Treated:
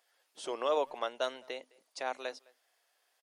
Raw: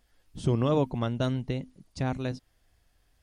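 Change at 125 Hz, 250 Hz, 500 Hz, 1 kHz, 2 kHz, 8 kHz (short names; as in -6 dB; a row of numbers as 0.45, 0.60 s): under -40 dB, -20.0 dB, -3.0 dB, 0.0 dB, 0.0 dB, 0.0 dB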